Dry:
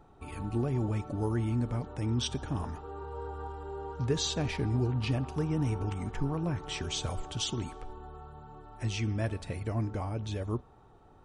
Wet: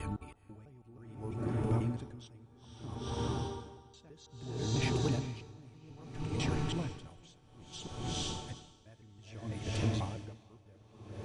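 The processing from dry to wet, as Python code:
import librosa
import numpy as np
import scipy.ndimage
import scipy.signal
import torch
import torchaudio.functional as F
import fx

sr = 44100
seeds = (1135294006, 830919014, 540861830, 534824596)

y = fx.block_reorder(x, sr, ms=164.0, group=3)
y = fx.echo_diffused(y, sr, ms=477, feedback_pct=65, wet_db=-4.0)
y = y * 10.0 ** (-27 * (0.5 - 0.5 * np.cos(2.0 * np.pi * 0.61 * np.arange(len(y)) / sr)) / 20.0)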